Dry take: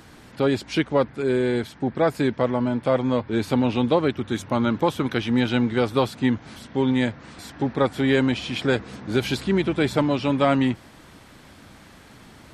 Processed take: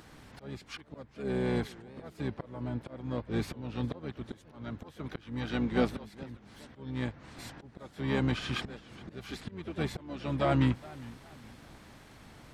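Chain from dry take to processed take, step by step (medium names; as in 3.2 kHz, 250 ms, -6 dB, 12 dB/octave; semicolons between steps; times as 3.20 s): slow attack 653 ms; harmony voices -12 st -3 dB, +3 st -13 dB, +7 st -17 dB; modulated delay 412 ms, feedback 37%, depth 171 cents, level -20 dB; trim -7.5 dB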